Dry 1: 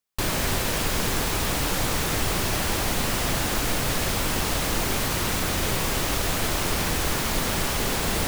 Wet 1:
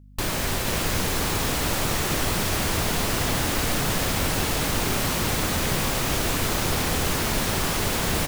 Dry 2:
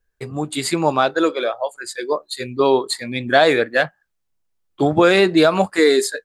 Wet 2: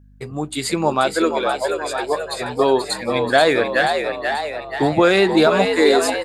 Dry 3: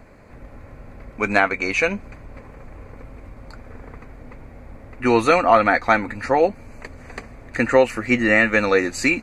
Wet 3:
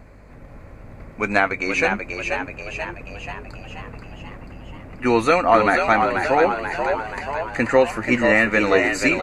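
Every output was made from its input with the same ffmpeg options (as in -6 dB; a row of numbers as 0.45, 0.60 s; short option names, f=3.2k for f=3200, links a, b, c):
-filter_complex "[0:a]aeval=exprs='val(0)+0.00501*(sin(2*PI*50*n/s)+sin(2*PI*2*50*n/s)/2+sin(2*PI*3*50*n/s)/3+sin(2*PI*4*50*n/s)/4+sin(2*PI*5*50*n/s)/5)':c=same,asplit=9[a][b][c][d][e][f][g][h][i];[b]adelay=484,afreqshift=71,volume=-5.5dB[j];[c]adelay=968,afreqshift=142,volume=-10.2dB[k];[d]adelay=1452,afreqshift=213,volume=-15dB[l];[e]adelay=1936,afreqshift=284,volume=-19.7dB[m];[f]adelay=2420,afreqshift=355,volume=-24.4dB[n];[g]adelay=2904,afreqshift=426,volume=-29.2dB[o];[h]adelay=3388,afreqshift=497,volume=-33.9dB[p];[i]adelay=3872,afreqshift=568,volume=-38.6dB[q];[a][j][k][l][m][n][o][p][q]amix=inputs=9:normalize=0,volume=-1dB"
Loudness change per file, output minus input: +0.5, -0.5, -1.0 LU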